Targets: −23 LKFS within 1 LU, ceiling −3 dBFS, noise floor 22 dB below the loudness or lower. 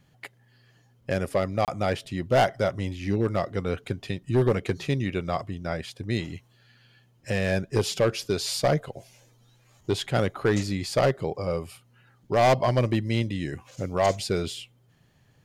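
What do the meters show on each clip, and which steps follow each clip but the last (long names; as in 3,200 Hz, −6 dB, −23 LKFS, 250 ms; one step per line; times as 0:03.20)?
share of clipped samples 1.0%; peaks flattened at −15.0 dBFS; number of dropouts 1; longest dropout 28 ms; integrated loudness −26.5 LKFS; sample peak −15.0 dBFS; target loudness −23.0 LKFS
→ clipped peaks rebuilt −15 dBFS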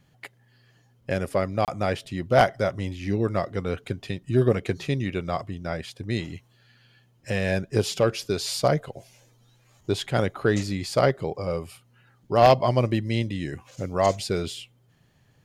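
share of clipped samples 0.0%; number of dropouts 1; longest dropout 28 ms
→ repair the gap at 0:01.65, 28 ms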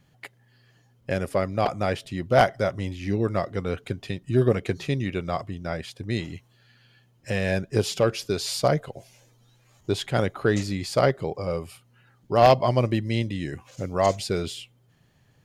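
number of dropouts 0; integrated loudness −25.5 LKFS; sample peak −6.0 dBFS; target loudness −23.0 LKFS
→ level +2.5 dB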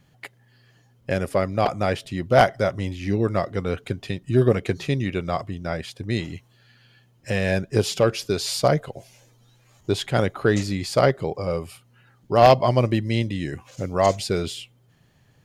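integrated loudness −23.0 LKFS; sample peak −3.5 dBFS; background noise floor −59 dBFS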